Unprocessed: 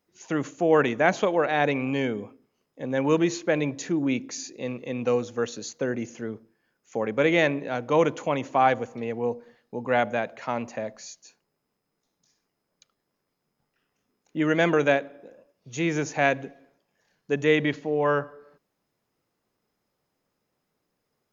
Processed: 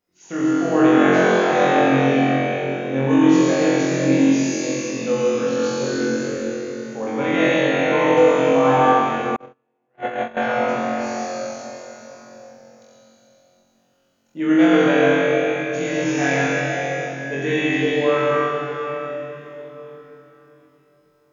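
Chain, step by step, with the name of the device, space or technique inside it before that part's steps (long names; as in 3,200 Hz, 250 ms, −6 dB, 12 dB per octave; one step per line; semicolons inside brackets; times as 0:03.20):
tunnel (flutter between parallel walls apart 3.8 metres, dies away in 1.1 s; convolution reverb RT60 4.0 s, pre-delay 67 ms, DRR −5 dB)
0:09.36–0:10.37: noise gate −12 dBFS, range −45 dB
level −5 dB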